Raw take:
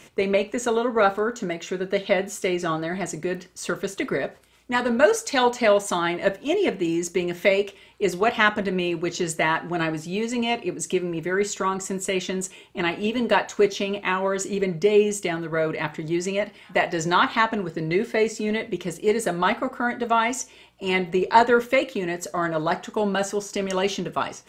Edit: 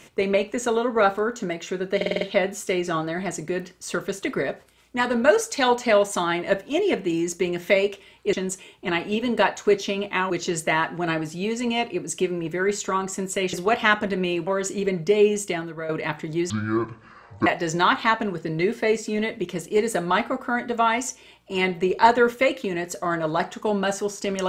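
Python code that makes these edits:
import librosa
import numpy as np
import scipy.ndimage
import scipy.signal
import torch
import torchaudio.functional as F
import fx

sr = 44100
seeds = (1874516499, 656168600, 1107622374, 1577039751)

y = fx.edit(x, sr, fx.stutter(start_s=1.96, slice_s=0.05, count=6),
    fx.swap(start_s=8.08, length_s=0.94, other_s=12.25, other_length_s=1.97),
    fx.fade_out_to(start_s=15.23, length_s=0.41, floor_db=-10.5),
    fx.speed_span(start_s=16.25, length_s=0.53, speed=0.55), tone=tone)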